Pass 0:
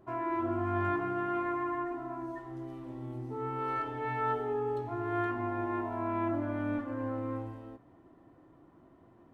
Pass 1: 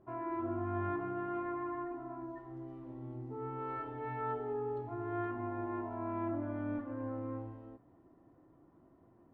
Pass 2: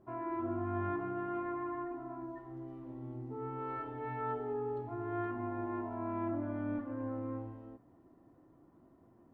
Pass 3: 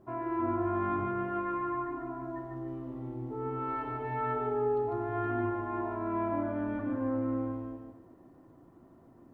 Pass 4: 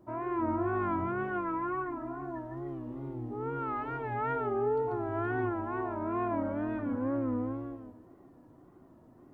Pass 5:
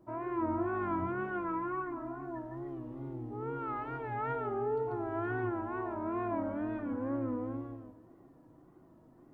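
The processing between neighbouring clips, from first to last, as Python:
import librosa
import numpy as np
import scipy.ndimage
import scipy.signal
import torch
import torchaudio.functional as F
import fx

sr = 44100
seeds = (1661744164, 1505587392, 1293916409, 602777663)

y1 = fx.lowpass(x, sr, hz=1200.0, slope=6)
y1 = F.gain(torch.from_numpy(y1), -4.0).numpy()
y2 = fx.peak_eq(y1, sr, hz=230.0, db=3.0, octaves=0.42)
y3 = fx.echo_feedback(y2, sr, ms=148, feedback_pct=29, wet_db=-3.5)
y3 = F.gain(torch.from_numpy(y3), 4.5).numpy()
y4 = fx.wow_flutter(y3, sr, seeds[0], rate_hz=2.1, depth_cents=110.0)
y5 = fx.room_shoebox(y4, sr, seeds[1], volume_m3=2600.0, walls='furnished', distance_m=0.65)
y5 = F.gain(torch.from_numpy(y5), -3.0).numpy()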